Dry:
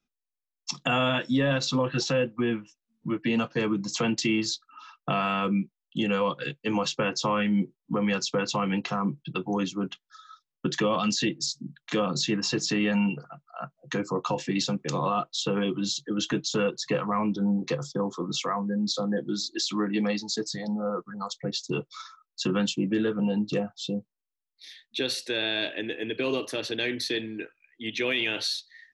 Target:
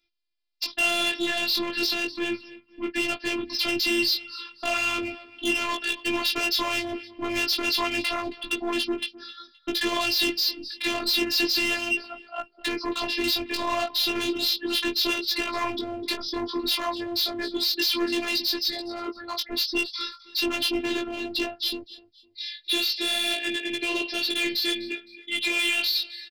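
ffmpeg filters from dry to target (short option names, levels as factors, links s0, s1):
-af "aresample=11025,asoftclip=type=tanh:threshold=0.0841,aresample=44100,aexciter=amount=2.4:drive=8.5:freq=2000,aecho=1:1:282|564:0.1|0.031,dynaudnorm=f=510:g=21:m=1.41,atempo=1.1,asoftclip=type=hard:threshold=0.075,flanger=delay=16.5:depth=3.5:speed=0.33,afftfilt=real='hypot(re,im)*cos(PI*b)':imag='0':win_size=512:overlap=0.75,volume=2.24"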